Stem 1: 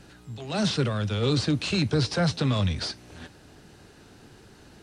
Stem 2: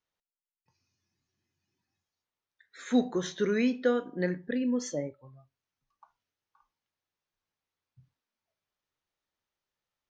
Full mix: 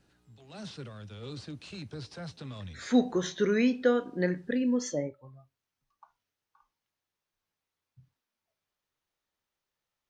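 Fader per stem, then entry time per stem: −17.5, +1.5 decibels; 0.00, 0.00 seconds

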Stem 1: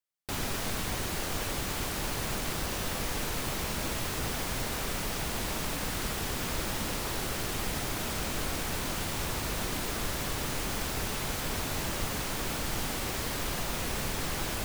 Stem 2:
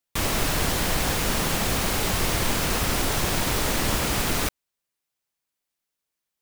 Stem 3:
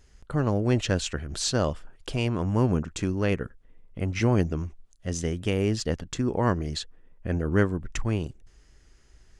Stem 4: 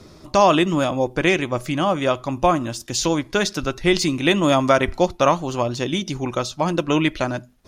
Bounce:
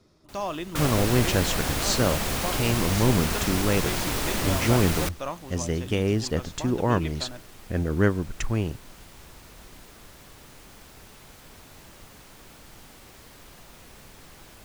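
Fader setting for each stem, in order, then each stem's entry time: −15.5, −3.5, +1.0, −16.5 decibels; 0.00, 0.60, 0.45, 0.00 seconds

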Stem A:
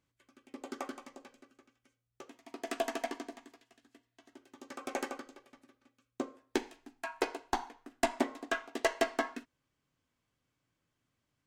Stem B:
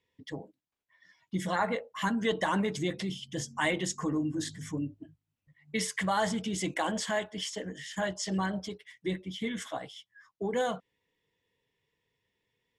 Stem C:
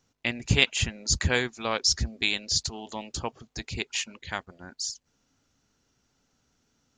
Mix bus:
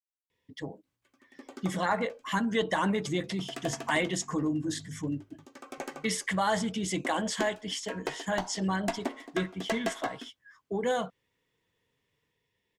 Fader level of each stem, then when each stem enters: −2.5 dB, +1.0 dB, muted; 0.85 s, 0.30 s, muted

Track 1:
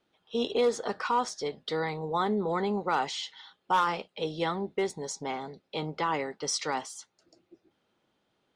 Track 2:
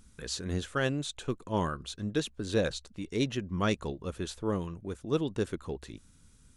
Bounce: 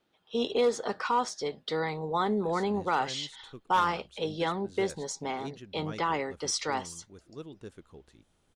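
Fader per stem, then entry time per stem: 0.0, −14.0 decibels; 0.00, 2.25 seconds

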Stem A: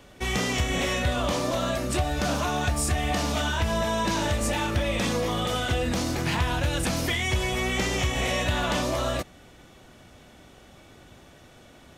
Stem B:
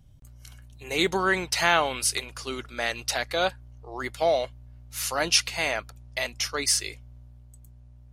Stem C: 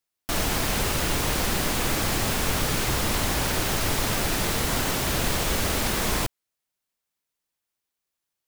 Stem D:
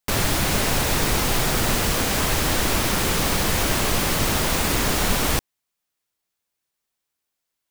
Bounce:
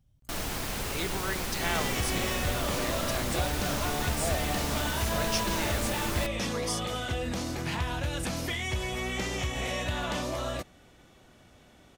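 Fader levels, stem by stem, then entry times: −6.0 dB, −11.5 dB, −8.5 dB, muted; 1.40 s, 0.00 s, 0.00 s, muted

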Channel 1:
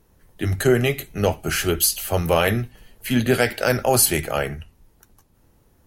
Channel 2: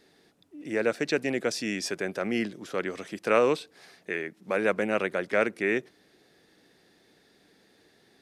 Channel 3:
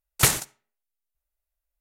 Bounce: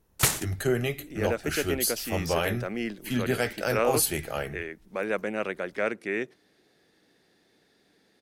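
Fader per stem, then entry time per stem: −8.5, −3.5, −4.0 decibels; 0.00, 0.45, 0.00 seconds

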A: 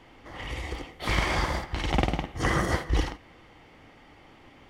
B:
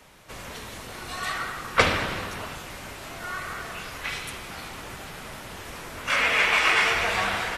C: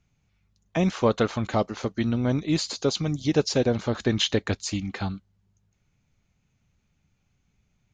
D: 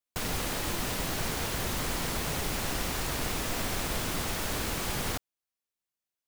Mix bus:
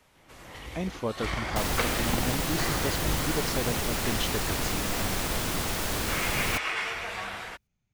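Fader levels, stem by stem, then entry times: −7.0, −10.0, −9.5, +2.5 decibels; 0.15, 0.00, 0.00, 1.40 seconds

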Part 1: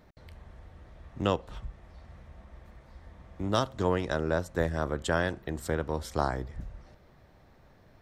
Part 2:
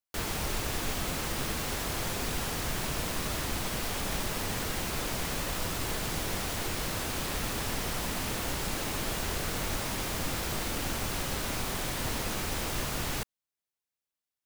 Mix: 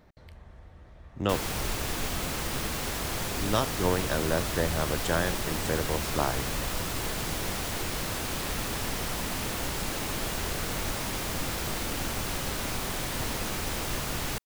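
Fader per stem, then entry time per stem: 0.0, +1.0 decibels; 0.00, 1.15 seconds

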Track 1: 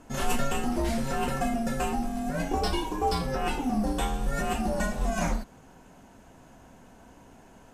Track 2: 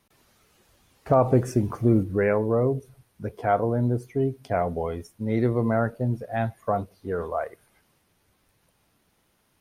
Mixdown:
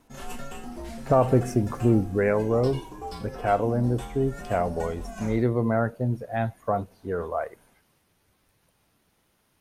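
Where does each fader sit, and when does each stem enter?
−10.0, −0.5 decibels; 0.00, 0.00 seconds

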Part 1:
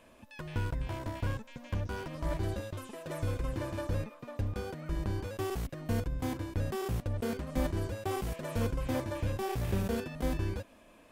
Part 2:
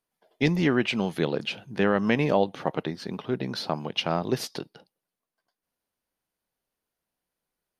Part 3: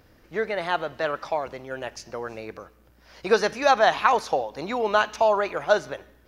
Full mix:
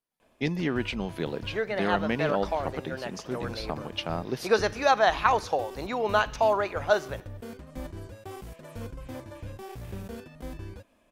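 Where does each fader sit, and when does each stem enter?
−7.0, −5.5, −3.0 decibels; 0.20, 0.00, 1.20 seconds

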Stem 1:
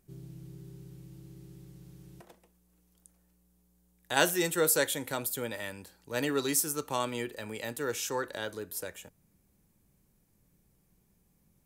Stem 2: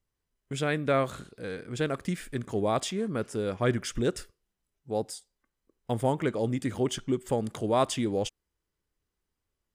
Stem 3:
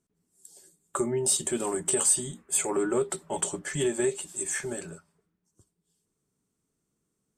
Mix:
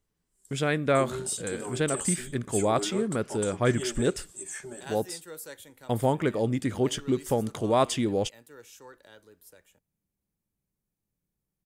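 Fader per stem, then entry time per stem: −16.0, +2.0, −7.5 decibels; 0.70, 0.00, 0.00 seconds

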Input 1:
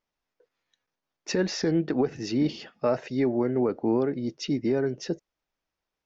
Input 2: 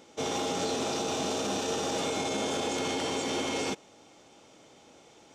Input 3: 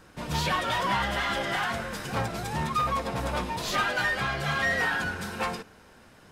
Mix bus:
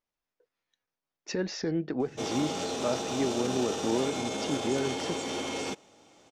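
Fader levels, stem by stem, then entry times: −5.5 dB, −2.5 dB, muted; 0.00 s, 2.00 s, muted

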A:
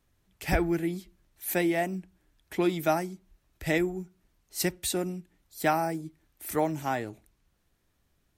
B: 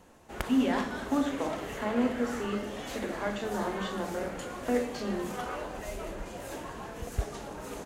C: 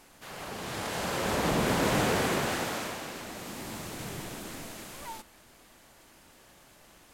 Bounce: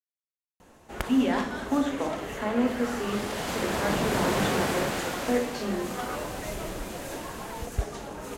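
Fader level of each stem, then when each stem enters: muted, +2.5 dB, −0.5 dB; muted, 0.60 s, 2.45 s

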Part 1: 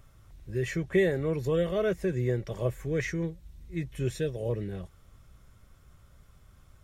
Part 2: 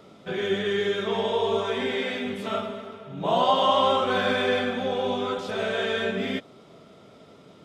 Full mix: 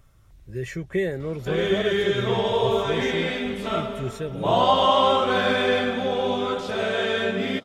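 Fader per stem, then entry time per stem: −0.5, +2.5 decibels; 0.00, 1.20 seconds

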